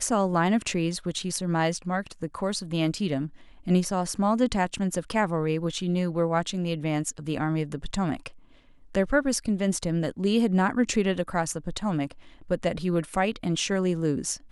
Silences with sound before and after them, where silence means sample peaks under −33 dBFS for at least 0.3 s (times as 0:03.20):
0:03.27–0:03.67
0:08.27–0:08.95
0:12.12–0:12.51